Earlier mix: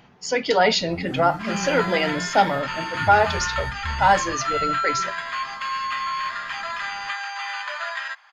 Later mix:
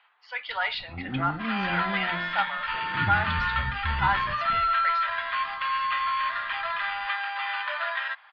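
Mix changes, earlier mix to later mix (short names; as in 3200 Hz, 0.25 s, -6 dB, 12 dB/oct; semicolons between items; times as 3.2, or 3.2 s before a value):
speech: add ladder high-pass 910 Hz, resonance 30%; master: add steep low-pass 4000 Hz 48 dB/oct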